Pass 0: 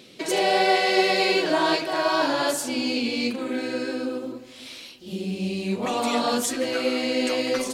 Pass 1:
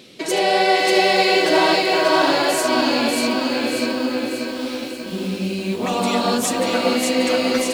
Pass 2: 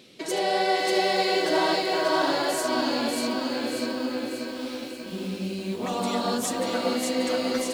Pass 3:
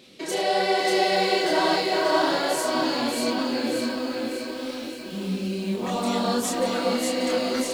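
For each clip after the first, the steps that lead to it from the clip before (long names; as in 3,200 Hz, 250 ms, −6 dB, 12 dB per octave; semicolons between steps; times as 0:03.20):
feedback echo at a low word length 589 ms, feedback 55%, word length 8 bits, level −3 dB; level +3.5 dB
dynamic equaliser 2,500 Hz, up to −7 dB, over −40 dBFS, Q 4.2; level −7 dB
multi-voice chorus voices 4, 1.1 Hz, delay 28 ms, depth 3 ms; level +4.5 dB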